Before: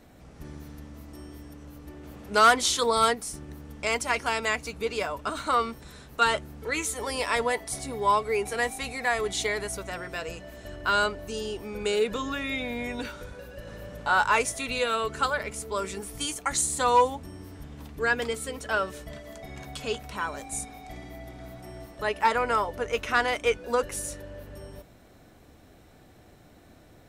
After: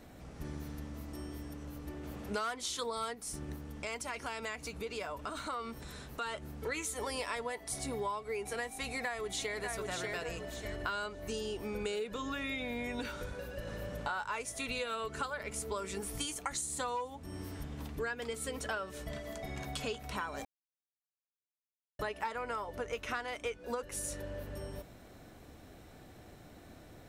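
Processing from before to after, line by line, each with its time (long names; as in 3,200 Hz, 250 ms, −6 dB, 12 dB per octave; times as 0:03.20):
0:03.55–0:06.63: downward compressor 2 to 1, threshold −42 dBFS
0:08.70–0:09.64: delay throw 590 ms, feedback 25%, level −7.5 dB
0:17.07–0:17.63: one half of a high-frequency compander encoder only
0:20.45–0:21.99: silence
whole clip: downward compressor 12 to 1, threshold −34 dBFS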